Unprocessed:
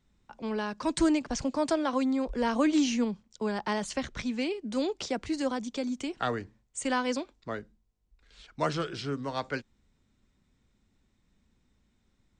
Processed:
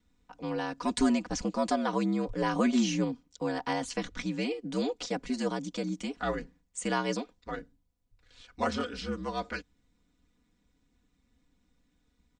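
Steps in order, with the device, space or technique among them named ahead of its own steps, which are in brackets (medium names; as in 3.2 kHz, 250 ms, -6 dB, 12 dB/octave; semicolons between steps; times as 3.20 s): ring-modulated robot voice (ring modulator 64 Hz; comb 4.1 ms, depth 78%)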